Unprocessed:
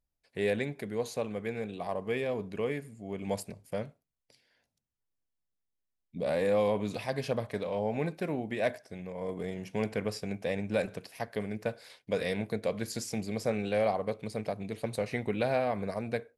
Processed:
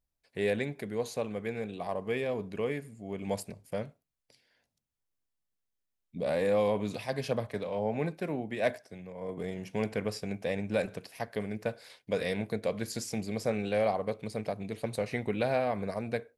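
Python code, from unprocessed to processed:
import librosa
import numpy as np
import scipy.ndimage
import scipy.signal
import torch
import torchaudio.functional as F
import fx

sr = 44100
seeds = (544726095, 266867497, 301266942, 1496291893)

y = fx.band_widen(x, sr, depth_pct=40, at=(6.96, 9.38))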